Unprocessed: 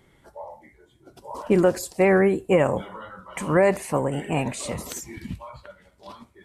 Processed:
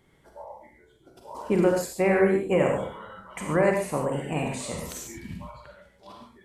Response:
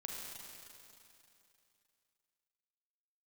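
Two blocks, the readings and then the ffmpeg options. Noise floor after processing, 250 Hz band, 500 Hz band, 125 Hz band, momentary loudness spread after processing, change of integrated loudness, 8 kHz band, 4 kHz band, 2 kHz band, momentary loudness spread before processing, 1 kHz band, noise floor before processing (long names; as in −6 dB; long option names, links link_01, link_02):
−60 dBFS, −2.5 dB, −2.5 dB, −3.0 dB, 21 LU, −3.0 dB, −2.5 dB, −3.0 dB, −2.5 dB, 20 LU, −3.0 dB, −60 dBFS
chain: -filter_complex "[1:a]atrim=start_sample=2205,atrim=end_sample=6615[link_01];[0:a][link_01]afir=irnorm=-1:irlink=0"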